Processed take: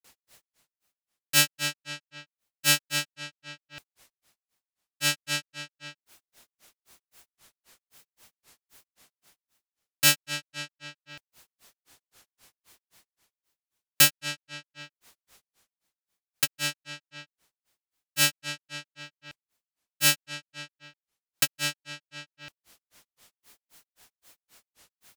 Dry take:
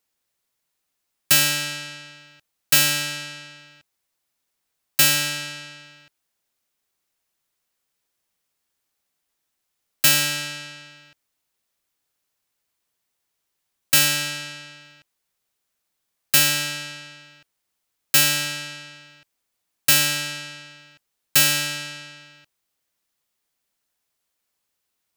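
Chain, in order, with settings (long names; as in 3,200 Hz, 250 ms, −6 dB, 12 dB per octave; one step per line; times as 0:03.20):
reversed playback
upward compression, threshold −33 dBFS
reversed playback
granular cloud 162 ms, grains 3.8 per second, pitch spread up and down by 0 semitones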